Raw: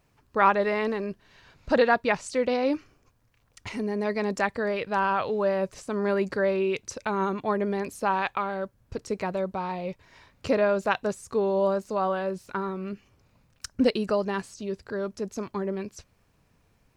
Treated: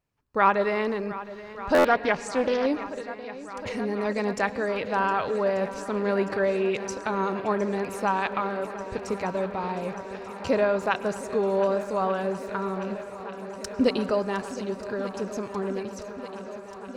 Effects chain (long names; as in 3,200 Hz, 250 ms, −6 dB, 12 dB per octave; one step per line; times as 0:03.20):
noise gate −58 dBFS, range −15 dB
feedback echo with a long and a short gap by turns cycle 1,187 ms, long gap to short 1.5 to 1, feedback 80%, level −16 dB
convolution reverb RT60 1.3 s, pre-delay 93 ms, DRR 16 dB
buffer that repeats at 0:01.74, samples 512, times 8
0:01.78–0:02.66: highs frequency-modulated by the lows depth 0.28 ms